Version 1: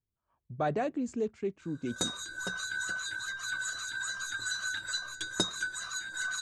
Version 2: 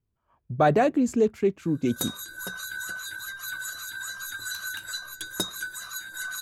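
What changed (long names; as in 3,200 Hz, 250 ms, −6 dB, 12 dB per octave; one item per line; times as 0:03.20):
speech +10.5 dB
master: remove Butterworth low-pass 8,500 Hz 36 dB per octave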